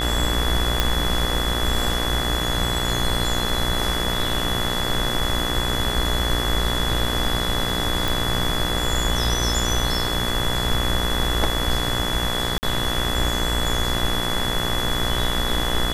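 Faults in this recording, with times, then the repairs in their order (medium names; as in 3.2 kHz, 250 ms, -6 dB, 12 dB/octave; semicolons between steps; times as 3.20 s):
buzz 60 Hz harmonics 34 -27 dBFS
whine 3.4 kHz -26 dBFS
0.80 s: pop -3 dBFS
8.08 s: pop
12.58–12.63 s: dropout 49 ms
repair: de-click; de-hum 60 Hz, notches 34; band-stop 3.4 kHz, Q 30; interpolate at 12.58 s, 49 ms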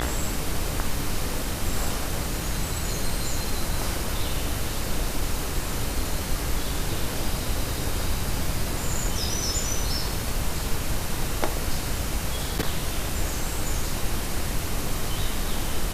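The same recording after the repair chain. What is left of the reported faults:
nothing left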